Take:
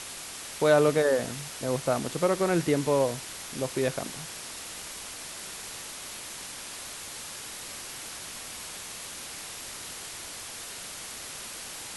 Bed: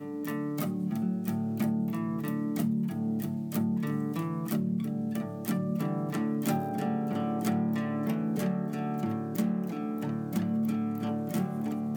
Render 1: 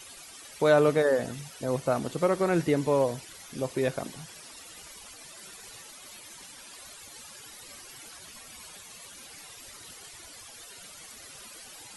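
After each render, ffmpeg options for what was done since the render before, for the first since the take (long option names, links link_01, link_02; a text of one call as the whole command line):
ffmpeg -i in.wav -af "afftdn=noise_reduction=14:noise_floor=-41" out.wav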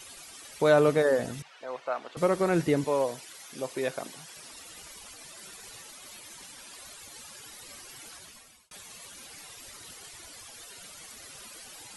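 ffmpeg -i in.wav -filter_complex "[0:a]asettb=1/sr,asplit=3[link_01][link_02][link_03];[link_01]atrim=end=1.424[link_04];[link_02]atrim=start=1.42:end=2.17,asetpts=PTS-STARTPTS,afade=type=in:duration=0.004:curve=qsin,afade=type=out:start_time=0.746:duration=0.004:curve=qsin,highpass=770,lowpass=2900[link_05];[link_03]atrim=start=2.166[link_06];[link_04][link_05]acrossfade=duration=0.004:curve1=hsin:curve2=qsin[link_07];[link_07][link_06]acrossfade=duration=0.004:curve1=qsin:curve2=hsin,asettb=1/sr,asplit=3[link_08][link_09][link_10];[link_08]atrim=end=2.844[link_11];[link_09]atrim=start=2.84:end=4.37,asetpts=PTS-STARTPTS,afade=type=in:duration=0.004:curve=qsin,afade=type=out:start_time=1.526:duration=0.004:curve=qsin,highpass=frequency=440:poles=1[link_12];[link_10]atrim=start=4.366[link_13];[link_11][link_12]acrossfade=duration=0.004:curve1=hsin:curve2=qsin[link_14];[link_14][link_13]acrossfade=duration=0.004:curve1=qsin:curve2=hsin,asplit=2[link_15][link_16];[link_15]atrim=end=8.71,asetpts=PTS-STARTPTS,afade=type=out:start_time=8.14:duration=0.57[link_17];[link_16]atrim=start=8.71,asetpts=PTS-STARTPTS,afade=type=in:duration=0.004:curve=hsin[link_18];[link_17][link_18]concat=n=2:v=0:a=1" out.wav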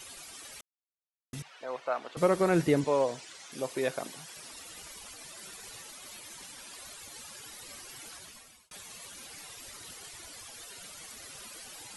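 ffmpeg -i in.wav -filter_complex "[0:a]asettb=1/sr,asplit=3[link_01][link_02][link_03];[link_01]atrim=end=2.804[link_04];[link_02]atrim=start=2.8:end=3.52,asetpts=PTS-STARTPTS,afade=type=in:duration=0.004:curve=qsin,afade=type=out:start_time=0.716:duration=0.004:curve=qsin,lowpass=frequency=8200:width=0.5412,lowpass=frequency=8200:width=1.3066[link_05];[link_03]atrim=start=3.516[link_06];[link_04][link_05]acrossfade=duration=0.004:curve1=hsin:curve2=qsin[link_07];[link_07][link_06]acrossfade=duration=0.004:curve1=qsin:curve2=hsin,asplit=3[link_08][link_09][link_10];[link_08]atrim=end=0.61,asetpts=PTS-STARTPTS,afade=type=out:start_time=0.606:duration=0.004:curve=hsin[link_11];[link_09]atrim=start=0.61:end=1.33,asetpts=PTS-STARTPTS,volume=0[link_12];[link_10]atrim=start=1.33,asetpts=PTS-STARTPTS,afade=type=in:duration=0.004:curve=hsin[link_13];[link_11][link_12][link_13]concat=n=3:v=0:a=1" out.wav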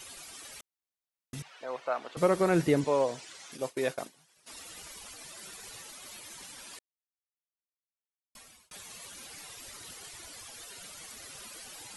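ffmpeg -i in.wav -filter_complex "[0:a]asplit=3[link_01][link_02][link_03];[link_01]afade=type=out:start_time=3.56:duration=0.02[link_04];[link_02]agate=range=-33dB:threshold=-36dB:ratio=3:release=100:detection=peak,afade=type=in:start_time=3.56:duration=0.02,afade=type=out:start_time=4.46:duration=0.02[link_05];[link_03]afade=type=in:start_time=4.46:duration=0.02[link_06];[link_04][link_05][link_06]amix=inputs=3:normalize=0,asplit=3[link_07][link_08][link_09];[link_07]atrim=end=6.79,asetpts=PTS-STARTPTS,afade=type=out:start_time=6.786:duration=0.004:curve=hsin[link_10];[link_08]atrim=start=6.79:end=8.35,asetpts=PTS-STARTPTS,volume=0[link_11];[link_09]atrim=start=8.35,asetpts=PTS-STARTPTS,afade=type=in:duration=0.004:curve=hsin[link_12];[link_10][link_11][link_12]concat=n=3:v=0:a=1" out.wav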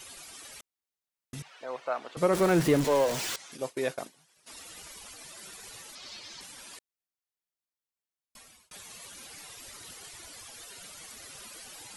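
ffmpeg -i in.wav -filter_complex "[0:a]asettb=1/sr,asplit=3[link_01][link_02][link_03];[link_01]atrim=end=2.334[link_04];[link_02]atrim=start=2.33:end=3.36,asetpts=PTS-STARTPTS,afade=type=in:duration=0.004:curve=qsin,afade=type=out:start_time=1.026:duration=0.004:curve=qsin,aeval=exprs='val(0)+0.5*0.0355*sgn(val(0))':channel_layout=same[link_05];[link_03]atrim=start=3.356[link_06];[link_04][link_05]acrossfade=duration=0.004:curve1=hsin:curve2=qsin[link_07];[link_07][link_06]acrossfade=duration=0.004:curve1=qsin:curve2=hsin,asettb=1/sr,asplit=3[link_08][link_09][link_10];[link_08]atrim=end=5.954[link_11];[link_09]atrim=start=5.95:end=6.41,asetpts=PTS-STARTPTS,afade=type=in:duration=0.004:curve=qsin,afade=type=out:start_time=0.456:duration=0.004:curve=qsin,lowpass=frequency=4800:width_type=q:width=2.5[link_12];[link_10]atrim=start=6.406[link_13];[link_11][link_12]acrossfade=duration=0.004:curve1=hsin:curve2=qsin[link_14];[link_14][link_13]acrossfade=duration=0.004:curve1=qsin:curve2=hsin" out.wav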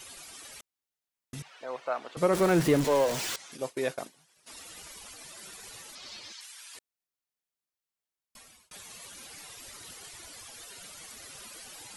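ffmpeg -i in.wav -filter_complex "[0:a]asettb=1/sr,asplit=3[link_01][link_02][link_03];[link_01]atrim=end=6.324[link_04];[link_02]atrim=start=6.32:end=6.75,asetpts=PTS-STARTPTS,afade=type=in:duration=0.004:curve=qsin,afade=type=out:start_time=0.426:duration=0.004:curve=qsin,highpass=1400[link_05];[link_03]atrim=start=6.746[link_06];[link_04][link_05]acrossfade=duration=0.004:curve1=hsin:curve2=qsin[link_07];[link_07][link_06]acrossfade=duration=0.004:curve1=qsin:curve2=hsin" out.wav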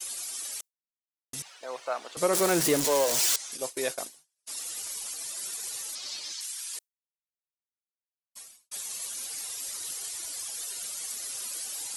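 ffmpeg -i in.wav -af "agate=range=-33dB:threshold=-49dB:ratio=3:detection=peak,bass=frequency=250:gain=-9,treble=frequency=4000:gain=13" out.wav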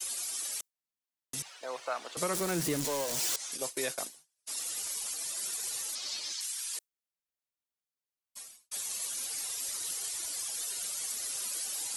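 ffmpeg -i in.wav -filter_complex "[0:a]acrossover=split=250|920[link_01][link_02][link_03];[link_02]acompressor=threshold=-37dB:ratio=6[link_04];[link_03]alimiter=limit=-23.5dB:level=0:latency=1:release=76[link_05];[link_01][link_04][link_05]amix=inputs=3:normalize=0" out.wav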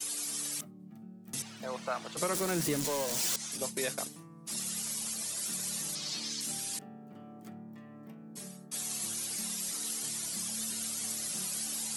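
ffmpeg -i in.wav -i bed.wav -filter_complex "[1:a]volume=-19dB[link_01];[0:a][link_01]amix=inputs=2:normalize=0" out.wav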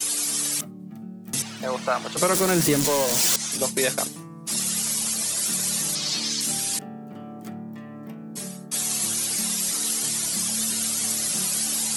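ffmpeg -i in.wav -af "volume=11dB" out.wav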